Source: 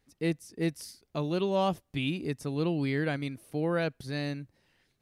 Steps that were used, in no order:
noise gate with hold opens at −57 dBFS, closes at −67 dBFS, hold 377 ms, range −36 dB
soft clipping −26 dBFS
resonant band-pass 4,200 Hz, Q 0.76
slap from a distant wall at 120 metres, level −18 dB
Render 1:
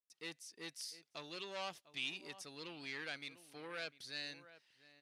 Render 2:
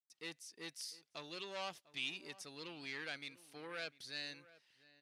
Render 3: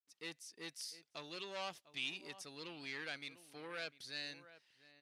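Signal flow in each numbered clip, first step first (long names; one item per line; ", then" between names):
slap from a distant wall, then soft clipping, then resonant band-pass, then noise gate with hold
soft clipping, then resonant band-pass, then noise gate with hold, then slap from a distant wall
noise gate with hold, then slap from a distant wall, then soft clipping, then resonant band-pass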